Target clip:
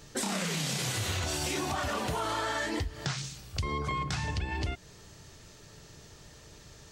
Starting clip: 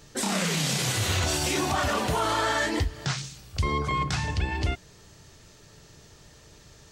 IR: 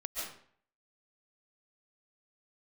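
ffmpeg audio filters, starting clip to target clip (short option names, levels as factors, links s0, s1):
-af "acompressor=threshold=0.0355:ratio=6"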